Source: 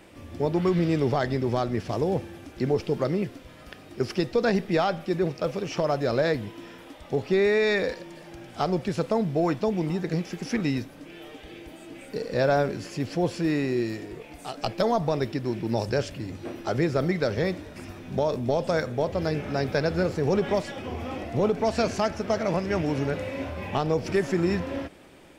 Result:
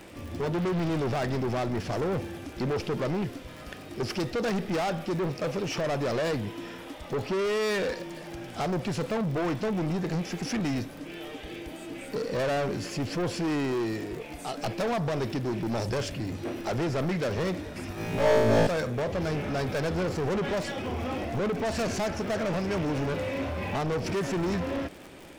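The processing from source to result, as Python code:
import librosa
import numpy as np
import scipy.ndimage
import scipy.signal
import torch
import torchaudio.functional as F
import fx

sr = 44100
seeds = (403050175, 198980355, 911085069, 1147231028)

y = 10.0 ** (-29.5 / 20.0) * np.tanh(x / 10.0 ** (-29.5 / 20.0))
y = fx.dmg_crackle(y, sr, seeds[0], per_s=58.0, level_db=-41.0)
y = fx.room_flutter(y, sr, wall_m=3.1, rt60_s=1.3, at=(17.95, 18.67))
y = y * librosa.db_to_amplitude(4.0)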